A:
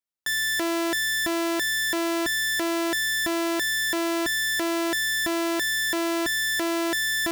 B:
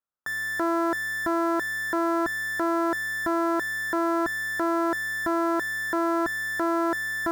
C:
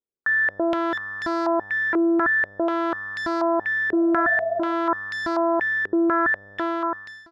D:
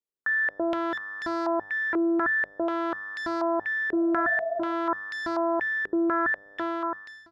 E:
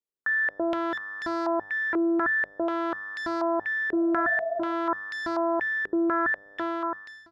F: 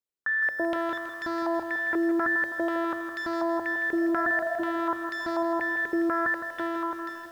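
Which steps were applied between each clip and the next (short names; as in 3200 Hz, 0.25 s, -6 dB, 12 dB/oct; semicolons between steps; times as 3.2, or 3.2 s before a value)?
resonant high shelf 1900 Hz -12 dB, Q 3
ending faded out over 0.72 s; spectral repair 3.95–4.7, 390–920 Hz after; stepped low-pass 4.1 Hz 410–4600 Hz
notches 50/100/150/200 Hz; gain -4.5 dB
nothing audible
diffused feedback echo 0.921 s, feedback 44%, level -16 dB; lo-fi delay 0.162 s, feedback 55%, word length 8-bit, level -9 dB; gain -1.5 dB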